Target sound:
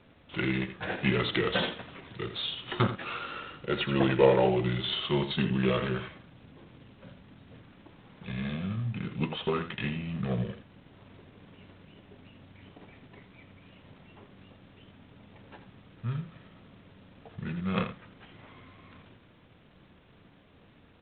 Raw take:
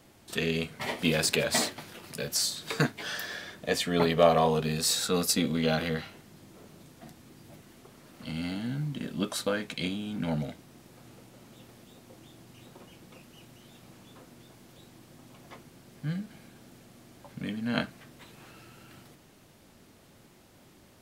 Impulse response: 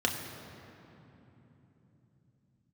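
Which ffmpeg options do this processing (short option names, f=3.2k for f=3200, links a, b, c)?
-filter_complex "[0:a]asetrate=35002,aresample=44100,atempo=1.25992,asplit=2[a][b];[b]aecho=0:1:83:0.282[c];[a][c]amix=inputs=2:normalize=0" -ar 8000 -c:a adpcm_g726 -b:a 24k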